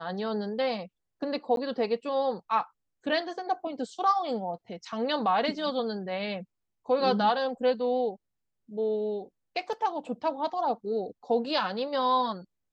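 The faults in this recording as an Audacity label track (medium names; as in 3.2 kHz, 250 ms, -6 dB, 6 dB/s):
1.560000	1.570000	dropout 12 ms
9.730000	9.730000	dropout 3.1 ms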